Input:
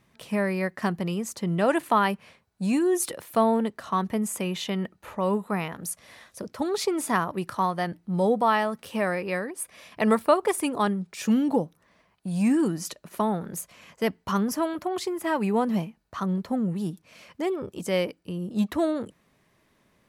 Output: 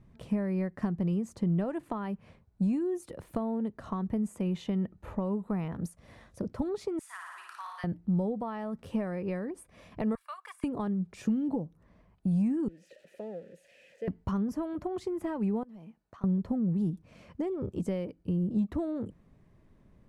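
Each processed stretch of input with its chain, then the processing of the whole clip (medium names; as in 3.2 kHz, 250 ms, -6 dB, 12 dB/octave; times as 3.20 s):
6.99–7.84 s: high-pass 1.4 kHz 24 dB/octave + flutter echo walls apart 9.7 m, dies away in 0.94 s
10.15–10.64 s: de-esser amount 85% + inverse Chebyshev high-pass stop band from 280 Hz, stop band 70 dB + comb 1.8 ms, depth 44%
12.68–14.08 s: zero-crossing glitches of -22 dBFS + vowel filter e
15.63–16.24 s: high-pass 620 Hz 6 dB/octave + compression 10:1, threshold -44 dBFS
whole clip: peaking EQ 8.6 kHz +6 dB 1.2 oct; compression 6:1, threshold -31 dBFS; tilt EQ -4.5 dB/octave; trim -5 dB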